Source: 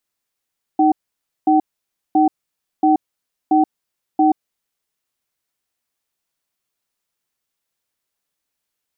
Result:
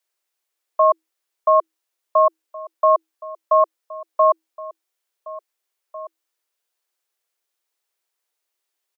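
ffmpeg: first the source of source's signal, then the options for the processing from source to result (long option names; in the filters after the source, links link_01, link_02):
-f lavfi -i "aevalsrc='0.224*(sin(2*PI*310*t)+sin(2*PI*762*t))*clip(min(mod(t,0.68),0.13-mod(t,0.68))/0.005,0,1)':duration=3.63:sample_rate=44100"
-filter_complex "[0:a]afreqshift=320,asplit=2[link_01][link_02];[link_02]adelay=1749,volume=-16dB,highshelf=frequency=4000:gain=-39.4[link_03];[link_01][link_03]amix=inputs=2:normalize=0"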